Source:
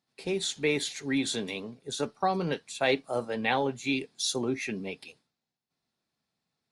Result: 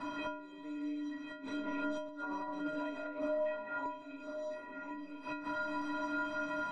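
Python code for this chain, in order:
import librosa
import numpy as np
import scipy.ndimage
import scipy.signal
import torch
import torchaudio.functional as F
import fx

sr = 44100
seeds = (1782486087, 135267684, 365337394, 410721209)

y = x + 0.5 * 10.0 ** (-32.5 / 20.0) * np.sign(x)
y = fx.rev_gated(y, sr, seeds[0], gate_ms=280, shape='rising', drr_db=-5.0)
y = fx.over_compress(y, sr, threshold_db=-33.0, ratio=-1.0, at=(1.32, 3.85), fade=0.02)
y = fx.gate_flip(y, sr, shuts_db=-20.0, range_db=-25)
y = scipy.signal.sosfilt(scipy.signal.butter(2, 1700.0, 'lowpass', fs=sr, output='sos'), y)
y = fx.peak_eq(y, sr, hz=1100.0, db=9.5, octaves=0.57)
y = fx.hum_notches(y, sr, base_hz=60, count=3)
y = fx.stiff_resonator(y, sr, f0_hz=290.0, decay_s=0.69, stiffness=0.03)
y = y + 10.0 ** (-16.0 / 20.0) * np.pad(y, (int(1051 * sr / 1000.0), 0))[:len(y)]
y = fx.band_squash(y, sr, depth_pct=70)
y = F.gain(torch.from_numpy(y), 14.5).numpy()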